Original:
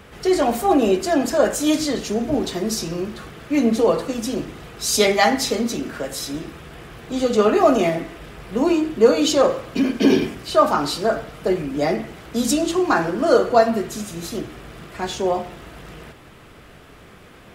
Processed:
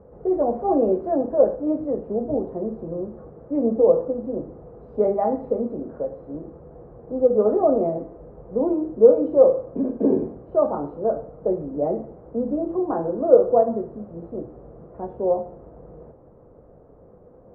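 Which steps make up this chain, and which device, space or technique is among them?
0.55–1.16 s: treble shelf 2 kHz +10.5 dB; under water (low-pass 870 Hz 24 dB/octave; peaking EQ 510 Hz +10.5 dB 0.37 oct); trim -5.5 dB

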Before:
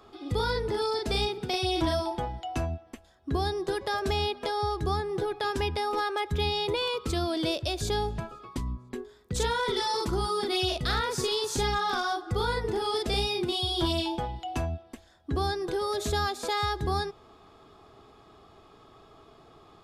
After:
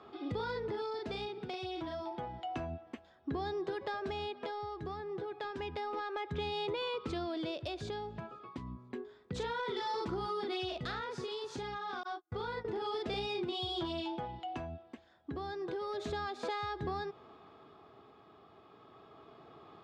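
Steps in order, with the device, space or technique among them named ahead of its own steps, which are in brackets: 12.03–12.65 s: gate -29 dBFS, range -44 dB; AM radio (band-pass 120–3200 Hz; compression, threshold -33 dBFS, peak gain reduction 9.5 dB; saturation -25 dBFS, distortion -26 dB; tremolo 0.3 Hz, depth 39%)

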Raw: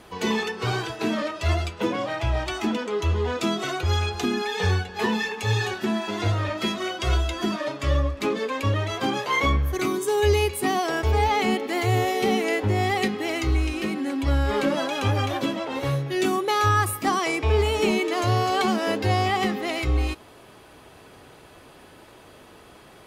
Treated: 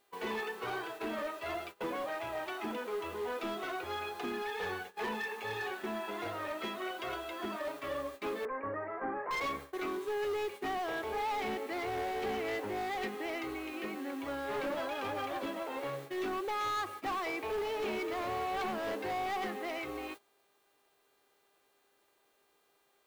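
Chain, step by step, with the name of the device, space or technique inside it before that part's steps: aircraft radio (band-pass 360–2400 Hz; hard clipper -24.5 dBFS, distortion -10 dB; mains buzz 400 Hz, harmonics 11, -51 dBFS -3 dB/octave; white noise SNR 22 dB; gate -37 dBFS, range -18 dB); 8.45–9.31 s: steep low-pass 2 kHz 48 dB/octave; trim -7.5 dB

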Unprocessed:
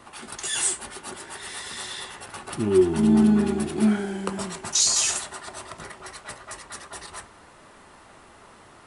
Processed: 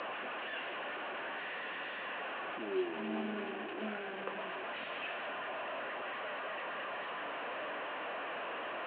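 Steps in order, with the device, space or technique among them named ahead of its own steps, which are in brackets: digital answering machine (band-pass 390–3100 Hz; one-bit delta coder 16 kbps, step -25.5 dBFS; cabinet simulation 370–3900 Hz, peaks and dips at 380 Hz -8 dB, 870 Hz -9 dB, 1.3 kHz -8 dB, 2.1 kHz -9 dB, 3.5 kHz -8 dB); trim -3 dB

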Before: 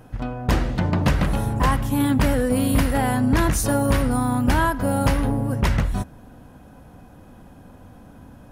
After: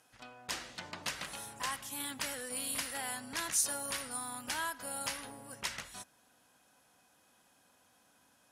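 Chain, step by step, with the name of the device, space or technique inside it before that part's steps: piezo pickup straight into a mixer (low-pass 8.1 kHz 12 dB/octave; differentiator)

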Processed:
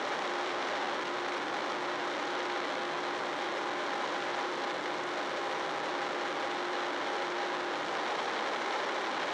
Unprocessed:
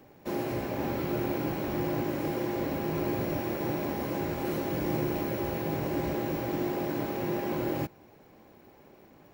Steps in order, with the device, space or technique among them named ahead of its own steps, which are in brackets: home computer beeper (one-bit comparator; cabinet simulation 620–5000 Hz, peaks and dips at 660 Hz -3 dB, 2.6 kHz -6 dB, 4.8 kHz -6 dB); trim +4.5 dB

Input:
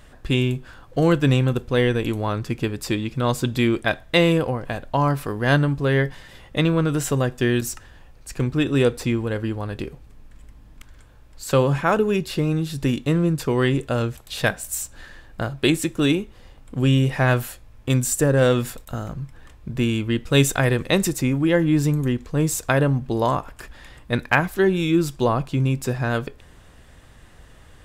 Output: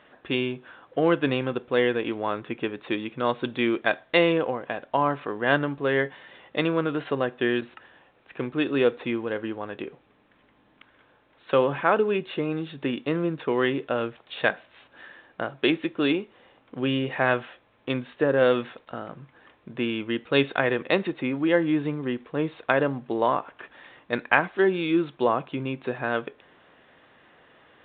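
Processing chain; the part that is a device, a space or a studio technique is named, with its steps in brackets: telephone (band-pass 300–3600 Hz; trim -1 dB; A-law 64 kbps 8 kHz)

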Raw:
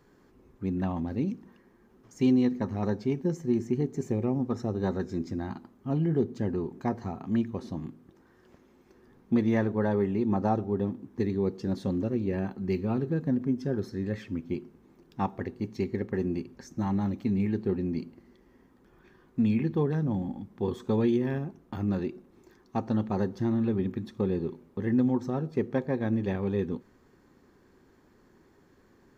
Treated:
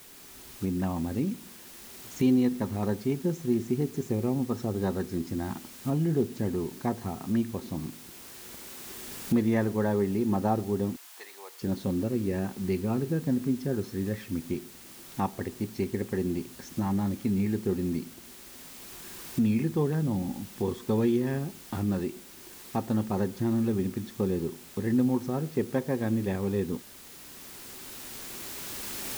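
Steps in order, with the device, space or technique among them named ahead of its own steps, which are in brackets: cheap recorder with automatic gain (white noise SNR 21 dB; recorder AGC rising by 6 dB/s); 10.96–11.62 s: high-pass 740 Hz 24 dB/octave

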